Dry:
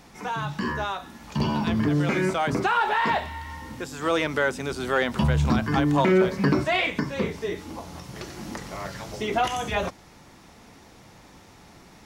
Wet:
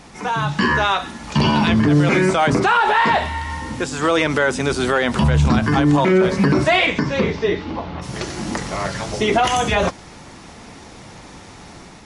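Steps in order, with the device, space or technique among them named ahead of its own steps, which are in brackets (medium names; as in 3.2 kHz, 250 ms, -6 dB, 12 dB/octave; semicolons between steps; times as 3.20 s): 0.58–1.74 s: dynamic bell 2.5 kHz, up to +6 dB, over -44 dBFS, Q 0.71; 6.86–8.01 s: low-pass 8.1 kHz -> 3.2 kHz 24 dB/octave; low-bitrate web radio (level rider gain up to 3 dB; peak limiter -15 dBFS, peak gain reduction 8.5 dB; trim +8 dB; MP3 48 kbps 32 kHz)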